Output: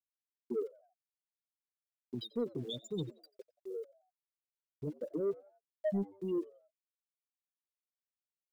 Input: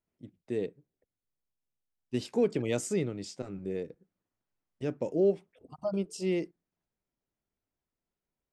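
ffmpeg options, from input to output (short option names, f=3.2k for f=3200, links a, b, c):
-filter_complex "[0:a]adynamicsmooth=sensitivity=4.5:basefreq=5.5k,highshelf=f=2.5k:t=q:w=3:g=11.5,afftfilt=real='re*gte(hypot(re,im),0.141)':imag='im*gte(hypot(re,im),0.141)':win_size=1024:overlap=0.75,alimiter=level_in=5.5dB:limit=-24dB:level=0:latency=1:release=449,volume=-5.5dB,aeval=exprs='val(0)*gte(abs(val(0)),0.00106)':c=same,flanger=delay=2.7:depth=7.3:regen=22:speed=0.25:shape=triangular,asoftclip=type=tanh:threshold=-32dB,asplit=2[a][b];[b]asplit=3[c][d][e];[c]adelay=89,afreqshift=96,volume=-22.5dB[f];[d]adelay=178,afreqshift=192,volume=-30.2dB[g];[e]adelay=267,afreqshift=288,volume=-38dB[h];[f][g][h]amix=inputs=3:normalize=0[i];[a][i]amix=inputs=2:normalize=0,volume=6dB"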